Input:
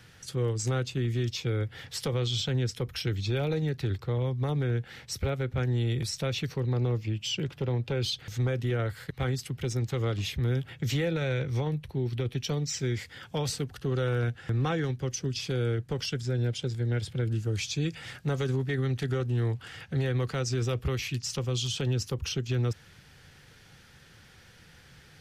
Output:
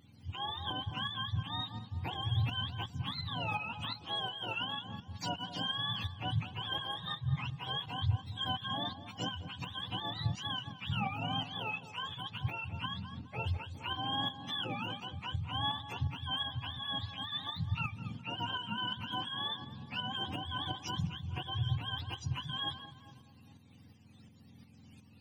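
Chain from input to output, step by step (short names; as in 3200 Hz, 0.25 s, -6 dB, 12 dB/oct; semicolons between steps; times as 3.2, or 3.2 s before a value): spectrum mirrored in octaves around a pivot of 630 Hz; darkening echo 0.208 s, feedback 53%, low-pass 1600 Hz, level -9.5 dB; tremolo saw up 2.8 Hz, depth 50%; gain -3.5 dB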